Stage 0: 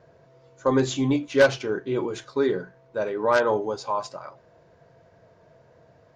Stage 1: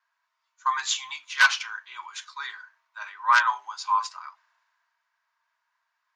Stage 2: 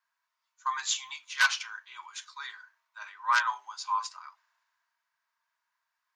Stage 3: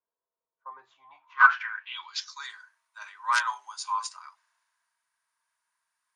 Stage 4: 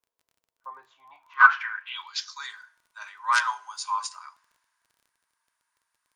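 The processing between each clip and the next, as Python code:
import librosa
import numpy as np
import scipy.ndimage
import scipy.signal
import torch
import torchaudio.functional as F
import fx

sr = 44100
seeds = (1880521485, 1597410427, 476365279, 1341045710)

y1 = scipy.signal.sosfilt(scipy.signal.ellip(4, 1.0, 50, 1000.0, 'highpass', fs=sr, output='sos'), x)
y1 = fx.band_widen(y1, sr, depth_pct=40)
y1 = F.gain(torch.from_numpy(y1), 4.0).numpy()
y2 = fx.high_shelf(y1, sr, hz=5100.0, db=7.5)
y2 = F.gain(torch.from_numpy(y2), -6.5).numpy()
y3 = fx.filter_sweep_lowpass(y2, sr, from_hz=480.0, to_hz=9500.0, start_s=0.92, end_s=2.55, q=7.9)
y4 = fx.dmg_crackle(y3, sr, seeds[0], per_s=23.0, level_db=-52.0)
y4 = fx.rev_fdn(y4, sr, rt60_s=0.64, lf_ratio=1.0, hf_ratio=0.85, size_ms=20.0, drr_db=17.0)
y4 = F.gain(torch.from_numpy(y4), 2.0).numpy()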